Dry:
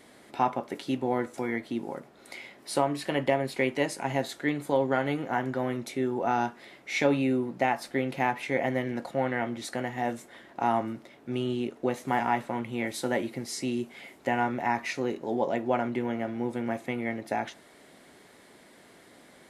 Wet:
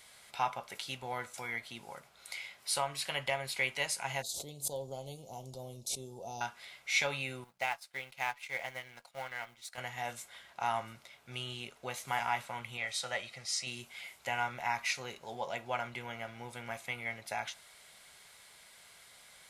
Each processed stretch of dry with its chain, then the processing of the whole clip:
0:04.22–0:06.41: Chebyshev band-stop filter 500–5,300 Hz + background raised ahead of every attack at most 130 dB per second
0:07.44–0:09.78: mu-law and A-law mismatch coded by A + low-shelf EQ 330 Hz −7 dB + expander for the loud parts, over −50 dBFS
0:12.77–0:13.67: low-pass filter 6,700 Hz + low-shelf EQ 400 Hz −5.5 dB + comb filter 1.6 ms, depth 41%
whole clip: guitar amp tone stack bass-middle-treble 10-0-10; notch filter 1,800 Hz, Q 9.1; level +4.5 dB

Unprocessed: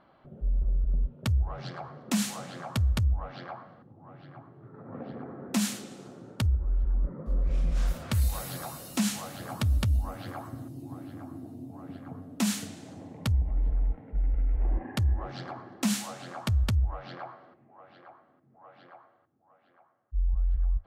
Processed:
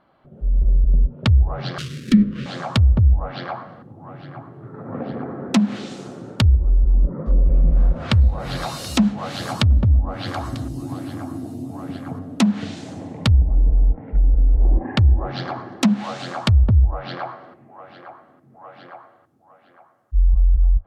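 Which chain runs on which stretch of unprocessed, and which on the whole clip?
0:01.78–0:02.46: spectral tilt −2 dB per octave + sample-rate reduction 2,100 Hz, jitter 20% + Butterworth band-reject 800 Hz, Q 0.59
0:07.43–0:12.19: high-shelf EQ 3,800 Hz +9.5 dB + single-tap delay 729 ms −20.5 dB
whole clip: treble cut that deepens with the level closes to 650 Hz, closed at −23 dBFS; dynamic equaliser 3,900 Hz, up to +4 dB, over −58 dBFS, Q 1.6; automatic gain control gain up to 11.5 dB

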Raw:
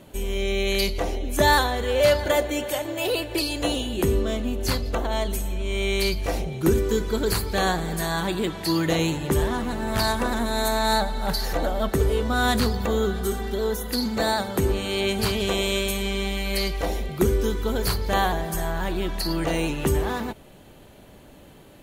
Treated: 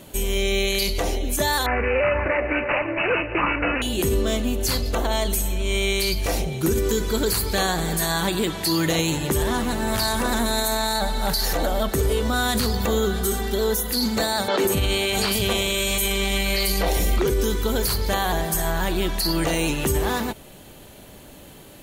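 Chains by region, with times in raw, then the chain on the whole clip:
0:01.66–0:03.82: high-shelf EQ 4,300 Hz +10.5 dB + bad sample-rate conversion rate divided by 8×, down none, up filtered
0:14.48–0:17.30: three-band delay without the direct sound mids, highs, lows 100/160 ms, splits 280/5,100 Hz + envelope flattener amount 100%
whole clip: high-shelf EQ 3,800 Hz +9 dB; brickwall limiter −15.5 dBFS; level +3 dB

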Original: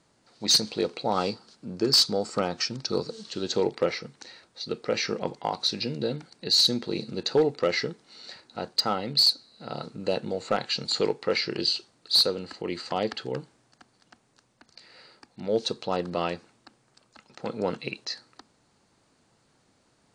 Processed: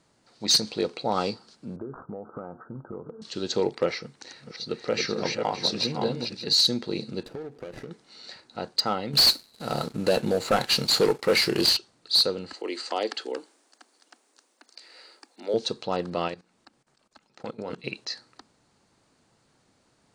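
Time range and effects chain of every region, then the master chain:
0:01.76–0:03.22: Butterworth low-pass 1,500 Hz 96 dB per octave + downward compressor, threshold −33 dBFS
0:03.97–0:06.53: delay that plays each chunk backwards 297 ms, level −3 dB + single-tap delay 575 ms −12.5 dB
0:07.25–0:07.91: running median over 41 samples + low-pass filter 11,000 Hz + downward compressor 8 to 1, threshold −34 dBFS
0:09.13–0:11.77: variable-slope delta modulation 64 kbit/s + leveller curve on the samples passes 2
0:12.53–0:15.54: Butterworth high-pass 270 Hz + high-shelf EQ 7,100 Hz +11 dB
0:16.28–0:17.84: mains-hum notches 60/120/180/240/300/360/420/480 Hz + output level in coarse steps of 17 dB
whole clip: no processing

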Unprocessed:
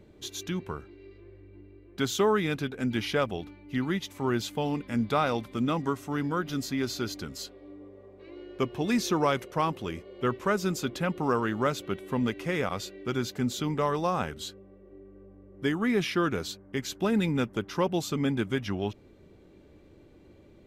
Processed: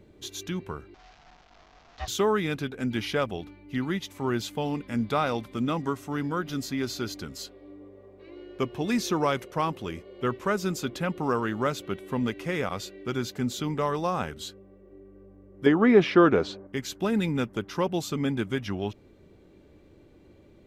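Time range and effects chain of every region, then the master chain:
0:00.94–0:02.08: linear delta modulator 32 kbit/s, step −43 dBFS + high-pass filter 350 Hz 24 dB per octave + ring modulation 350 Hz
0:15.66–0:16.67: low-pass filter 4,400 Hz + parametric band 560 Hz +11.5 dB 2.8 octaves
whole clip: no processing

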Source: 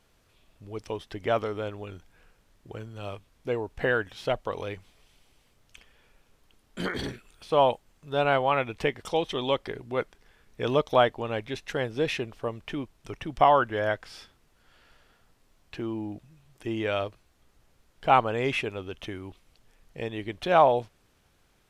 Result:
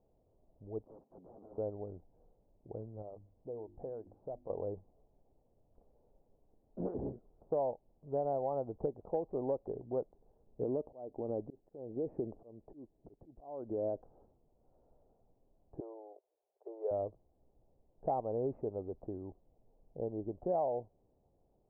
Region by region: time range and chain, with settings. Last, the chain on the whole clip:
0:00.85–0:01.58: high-pass filter 170 Hz 24 dB per octave + downward compressor 20 to 1, threshold −35 dBFS + wrap-around overflow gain 41 dB
0:03.02–0:04.50: mains-hum notches 50/100/150/200/250/300/350 Hz + downward compressor 2 to 1, threshold −45 dBFS
0:10.62–0:14.02: parametric band 300 Hz +8.5 dB 1.7 octaves + downward compressor 4 to 1, threshold −26 dBFS + volume swells 465 ms
0:15.80–0:16.91: mu-law and A-law mismatch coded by A + Butterworth high-pass 390 Hz 72 dB per octave
whole clip: Butterworth low-pass 790 Hz 36 dB per octave; parametric band 580 Hz +5 dB 1.8 octaves; downward compressor 5 to 1, threshold −24 dBFS; level −7 dB

